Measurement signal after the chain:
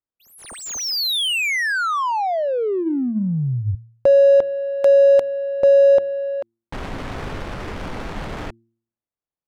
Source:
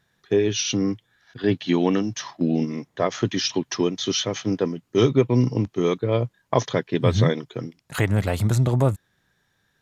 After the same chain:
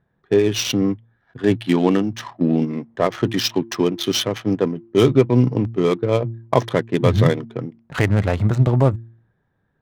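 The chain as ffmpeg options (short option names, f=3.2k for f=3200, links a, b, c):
-af "bandreject=f=114.4:t=h:w=4,bandreject=f=228.8:t=h:w=4,bandreject=f=343.2:t=h:w=4,adynamicsmooth=sensitivity=4:basefreq=1.1k,volume=4dB"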